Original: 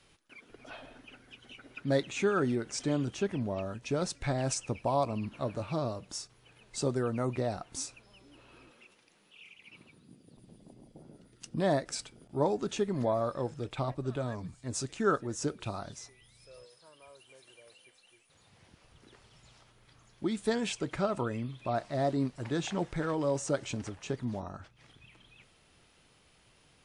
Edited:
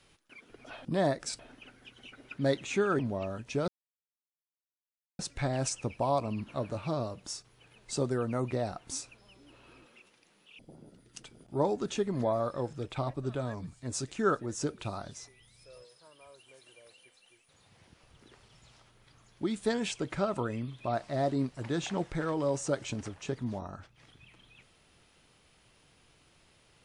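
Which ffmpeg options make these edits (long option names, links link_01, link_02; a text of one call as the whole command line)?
ffmpeg -i in.wav -filter_complex "[0:a]asplit=7[link_01][link_02][link_03][link_04][link_05][link_06][link_07];[link_01]atrim=end=0.852[link_08];[link_02]atrim=start=11.508:end=12.052[link_09];[link_03]atrim=start=0.848:end=2.452[link_10];[link_04]atrim=start=3.348:end=4.04,asetpts=PTS-STARTPTS,afade=type=out:start_time=0.688:duration=0.004:curve=hsin,apad=pad_dur=1.51[link_11];[link_05]atrim=start=4.04:end=9.442,asetpts=PTS-STARTPTS,afade=type=in:duration=0.004:curve=hsin[link_12];[link_06]atrim=start=10.858:end=11.512[link_13];[link_07]atrim=start=12.048[link_14];[link_08][link_09]acrossfade=duration=0.004:curve1=hsin:curve2=hsin[link_15];[link_15][link_10]acrossfade=duration=0.004:curve1=hsin:curve2=hsin[link_16];[link_11][link_12]concat=n=2:v=0:a=1[link_17];[link_16][link_17]acrossfade=duration=0.004:curve1=hsin:curve2=hsin[link_18];[link_18][link_13]acrossfade=duration=0.004:curve1=hsin:curve2=hsin[link_19];[link_19][link_14]acrossfade=duration=0.004:curve1=hsin:curve2=hsin" out.wav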